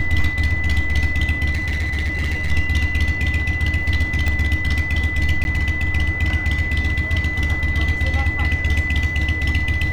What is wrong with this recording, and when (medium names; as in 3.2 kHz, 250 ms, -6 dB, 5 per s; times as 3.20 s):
whine 2 kHz -23 dBFS
1.51–2.52 s: clipped -17.5 dBFS
4.28 s: pop -9 dBFS
5.44–5.45 s: dropout